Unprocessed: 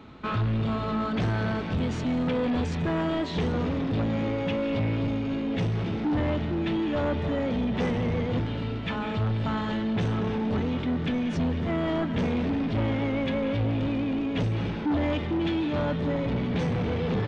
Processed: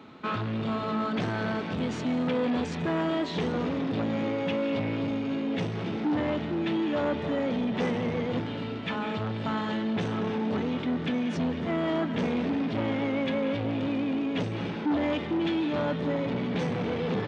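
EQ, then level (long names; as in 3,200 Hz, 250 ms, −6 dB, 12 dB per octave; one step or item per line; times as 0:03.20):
high-pass filter 170 Hz 12 dB per octave
0.0 dB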